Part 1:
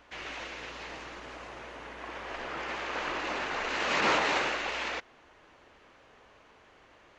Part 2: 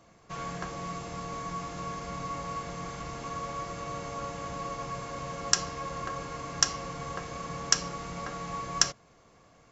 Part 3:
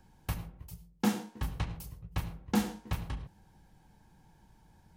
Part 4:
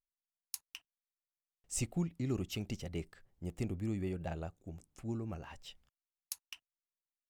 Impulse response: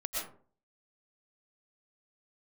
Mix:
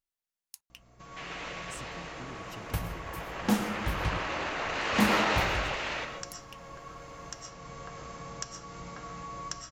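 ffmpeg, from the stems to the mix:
-filter_complex "[0:a]adelay=1050,volume=-4.5dB,asplit=2[link_01][link_02];[link_02]volume=-4.5dB[link_03];[1:a]acompressor=threshold=-41dB:ratio=2.5,aeval=exprs='val(0)+0.002*(sin(2*PI*60*n/s)+sin(2*PI*2*60*n/s)/2+sin(2*PI*3*60*n/s)/3+sin(2*PI*4*60*n/s)/4+sin(2*PI*5*60*n/s)/5)':channel_layout=same,adelay=700,volume=-5dB,asplit=2[link_04][link_05];[link_05]volume=-3.5dB[link_06];[2:a]adelay=2450,volume=0.5dB,asplit=3[link_07][link_08][link_09];[link_07]atrim=end=4.18,asetpts=PTS-STARTPTS,afade=type=out:start_time=4.176:duration=0.004:curve=hsin[link_10];[link_08]atrim=start=4.18:end=4.9,asetpts=PTS-STARTPTS,volume=0[link_11];[link_09]atrim=start=4.9,asetpts=PTS-STARTPTS,afade=type=in:duration=0.004:curve=hsin[link_12];[link_10][link_11][link_12]concat=n=3:v=0:a=1,asplit=2[link_13][link_14];[link_14]volume=-11.5dB[link_15];[3:a]acompressor=threshold=-47dB:ratio=6,volume=2dB,asplit=2[link_16][link_17];[link_17]apad=whole_len=459137[link_18];[link_04][link_18]sidechaincompress=threshold=-55dB:ratio=8:attack=6.9:release=1360[link_19];[4:a]atrim=start_sample=2205[link_20];[link_03][link_06][link_15]amix=inputs=3:normalize=0[link_21];[link_21][link_20]afir=irnorm=-1:irlink=0[link_22];[link_01][link_19][link_13][link_16][link_22]amix=inputs=5:normalize=0"

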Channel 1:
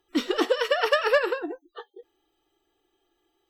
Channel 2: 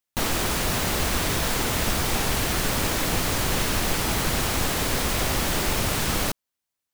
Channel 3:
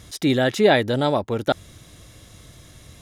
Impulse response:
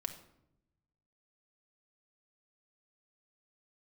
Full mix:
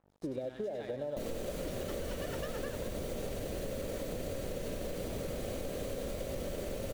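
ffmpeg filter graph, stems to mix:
-filter_complex "[0:a]adelay=1500,volume=-12.5dB[link_01];[1:a]bandreject=frequency=5200:width=12,alimiter=limit=-18.5dB:level=0:latency=1,adelay=1000,volume=0dB,asplit=3[link_02][link_03][link_04];[link_03]volume=-8.5dB[link_05];[link_04]volume=-16dB[link_06];[2:a]highpass=frequency=79:width=0.5412,highpass=frequency=79:width=1.3066,aeval=exprs='val(0)+0.01*(sin(2*PI*50*n/s)+sin(2*PI*2*50*n/s)/2+sin(2*PI*3*50*n/s)/3+sin(2*PI*4*50*n/s)/4+sin(2*PI*5*50*n/s)/5)':channel_layout=same,volume=-15.5dB,asplit=2[link_07][link_08];[link_08]volume=-10.5dB[link_09];[link_02][link_07]amix=inputs=2:normalize=0,lowpass=frequency=560:width_type=q:width=5.6,acompressor=threshold=-27dB:ratio=4,volume=0dB[link_10];[3:a]atrim=start_sample=2205[link_11];[link_05][link_11]afir=irnorm=-1:irlink=0[link_12];[link_06][link_09]amix=inputs=2:normalize=0,aecho=0:1:96|192|288|384|480|576|672|768|864:1|0.57|0.325|0.185|0.106|0.0602|0.0343|0.0195|0.0111[link_13];[link_01][link_10][link_12][link_13]amix=inputs=4:normalize=0,aeval=exprs='sgn(val(0))*max(abs(val(0))-0.00266,0)':channel_layout=same,acompressor=threshold=-35dB:ratio=6"

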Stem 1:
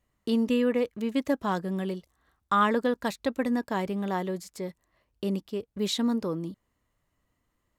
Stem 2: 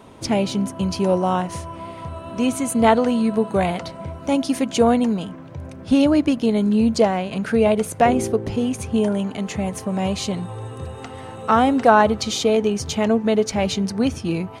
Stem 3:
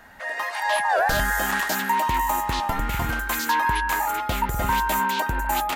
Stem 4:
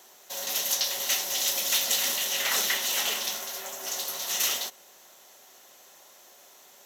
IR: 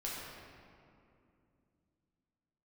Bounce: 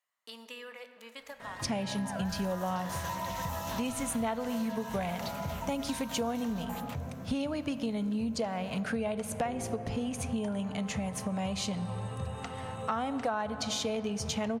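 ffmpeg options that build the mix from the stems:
-filter_complex "[0:a]highpass=840,acompressor=threshold=-35dB:ratio=6,volume=-7dB,asplit=2[link_01][link_02];[link_02]volume=-7dB[link_03];[1:a]adelay=1400,volume=-4.5dB,asplit=2[link_04][link_05];[link_05]volume=-14dB[link_06];[2:a]adelay=1200,volume=-17.5dB[link_07];[3:a]acompressor=threshold=-49dB:ratio=1.5,adelay=1950,volume=-13.5dB,asplit=2[link_08][link_09];[link_09]volume=-5.5dB[link_10];[4:a]atrim=start_sample=2205[link_11];[link_03][link_06][link_10]amix=inputs=3:normalize=0[link_12];[link_12][link_11]afir=irnorm=-1:irlink=0[link_13];[link_01][link_04][link_07][link_08][link_13]amix=inputs=5:normalize=0,equalizer=frequency=350:width_type=o:width=0.57:gain=-11,acompressor=threshold=-30dB:ratio=6"

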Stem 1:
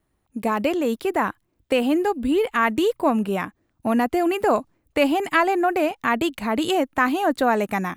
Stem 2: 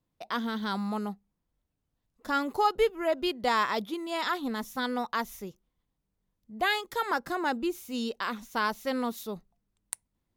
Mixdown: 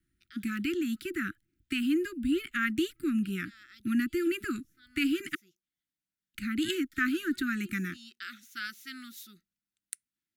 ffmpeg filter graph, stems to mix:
ffmpeg -i stem1.wav -i stem2.wav -filter_complex "[0:a]volume=-6dB,asplit=3[link_01][link_02][link_03];[link_01]atrim=end=5.35,asetpts=PTS-STARTPTS,afade=type=out:start_time=5.346:duration=0.004:curve=hsin[link_04];[link_02]atrim=start=5.35:end=6.34,asetpts=PTS-STARTPTS,volume=0[link_05];[link_03]atrim=start=6.34,asetpts=PTS-STARTPTS,afade=type=in:duration=0.004:curve=hsin[link_06];[link_04][link_05][link_06]concat=n=3:v=0:a=1,asplit=2[link_07][link_08];[1:a]highpass=frequency=860:poles=1,volume=-3.5dB,afade=type=in:start_time=4.85:duration=0.48:silence=0.266073[link_09];[link_08]apad=whole_len=456912[link_10];[link_09][link_10]sidechaincompress=threshold=-38dB:ratio=12:attack=34:release=509[link_11];[link_07][link_11]amix=inputs=2:normalize=0,asuperstop=centerf=690:order=20:qfactor=0.73" out.wav

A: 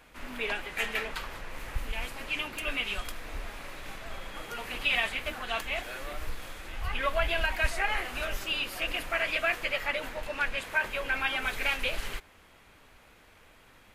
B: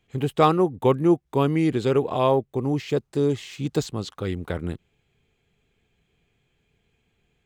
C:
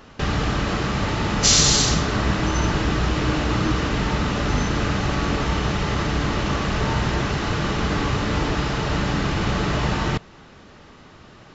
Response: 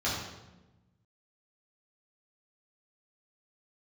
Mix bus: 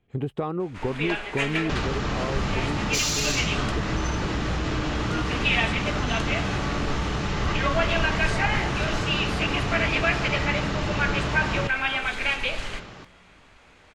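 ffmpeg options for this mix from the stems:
-filter_complex "[0:a]lowpass=frequency=8200:width=0.5412,lowpass=frequency=8200:width=1.3066,adelay=600,volume=2dB,asplit=2[link_01][link_02];[link_02]volume=-15dB[link_03];[1:a]lowpass=frequency=1100:poles=1,acompressor=threshold=-20dB:ratio=6,volume=1dB[link_04];[2:a]adelay=1500,volume=2.5dB[link_05];[link_04][link_05]amix=inputs=2:normalize=0,asoftclip=type=tanh:threshold=-9.5dB,acompressor=threshold=-24dB:ratio=6,volume=0dB[link_06];[3:a]atrim=start_sample=2205[link_07];[link_03][link_07]afir=irnorm=-1:irlink=0[link_08];[link_01][link_06][link_08]amix=inputs=3:normalize=0"

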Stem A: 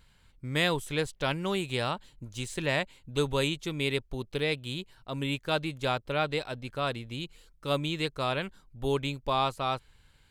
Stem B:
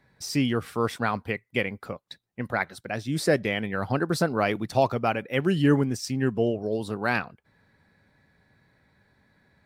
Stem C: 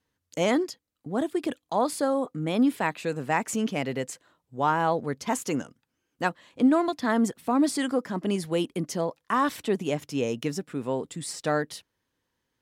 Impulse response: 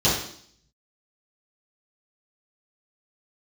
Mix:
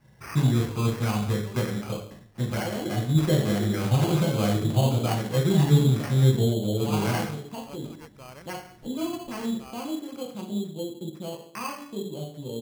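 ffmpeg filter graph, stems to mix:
-filter_complex "[0:a]volume=-14.5dB[link_01];[1:a]highshelf=frequency=2900:gain=-9,bandreject=frequency=50:width_type=h:width=6,bandreject=frequency=100:width_type=h:width=6,acrossover=split=160|3000[link_02][link_03][link_04];[link_03]acompressor=threshold=-37dB:ratio=2[link_05];[link_02][link_05][link_04]amix=inputs=3:normalize=0,volume=-2.5dB,asplit=2[link_06][link_07];[link_07]volume=-12.5dB[link_08];[2:a]afwtdn=0.0251,adelay=2250,volume=-8dB,asplit=2[link_09][link_10];[link_10]volume=-21dB[link_11];[link_01][link_09]amix=inputs=2:normalize=0,acompressor=threshold=-38dB:ratio=2.5,volume=0dB[link_12];[3:a]atrim=start_sample=2205[link_13];[link_08][link_11]amix=inputs=2:normalize=0[link_14];[link_14][link_13]afir=irnorm=-1:irlink=0[link_15];[link_06][link_12][link_15]amix=inputs=3:normalize=0,acrusher=samples=12:mix=1:aa=0.000001"

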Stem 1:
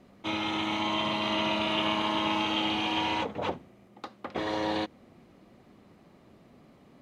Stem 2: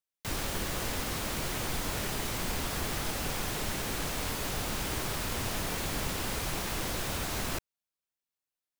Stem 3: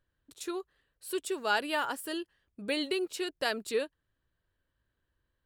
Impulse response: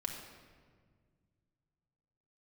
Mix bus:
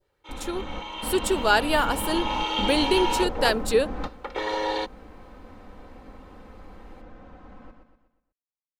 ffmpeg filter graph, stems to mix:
-filter_complex "[0:a]highpass=440,aecho=1:1:2.2:0.98,volume=-5dB,afade=type=in:start_time=1.87:duration=0.71:silence=0.316228[link_01];[1:a]lowpass=1100,aecho=1:1:3.9:0.91,volume=-5.5dB,asplit=2[link_02][link_03];[link_03]volume=-15dB[link_04];[2:a]volume=3dB,asplit=2[link_05][link_06];[link_06]apad=whole_len=387912[link_07];[link_02][link_07]sidechaingate=range=-33dB:threshold=-59dB:ratio=16:detection=peak[link_08];[link_04]aecho=0:1:122|244|366|488|610|732:1|0.46|0.212|0.0973|0.0448|0.0206[link_09];[link_01][link_08][link_05][link_09]amix=inputs=4:normalize=0,adynamicequalizer=threshold=0.00794:dfrequency=2200:dqfactor=0.88:tfrequency=2200:tqfactor=0.88:attack=5:release=100:ratio=0.375:range=2.5:mode=cutabove:tftype=bell,dynaudnorm=framelen=140:gausssize=11:maxgain=7dB"

